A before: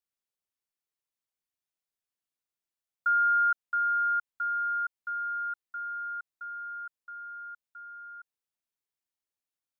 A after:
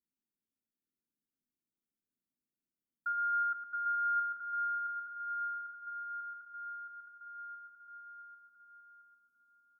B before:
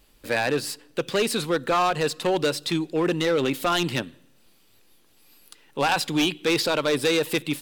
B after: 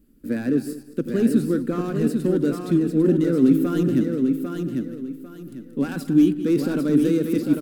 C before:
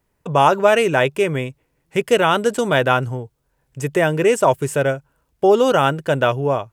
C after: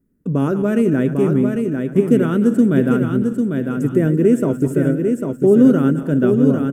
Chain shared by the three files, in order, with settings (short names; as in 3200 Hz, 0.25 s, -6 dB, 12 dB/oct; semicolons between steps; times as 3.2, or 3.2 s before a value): regenerating reverse delay 0.104 s, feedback 47%, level -11.5 dB; EQ curve 120 Hz 0 dB, 250 Hz +14 dB, 880 Hz -22 dB, 1400 Hz -9 dB, 2500 Hz -18 dB, 3900 Hz -19 dB, 13000 Hz -6 dB; on a send: feedback echo 0.798 s, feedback 28%, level -5 dB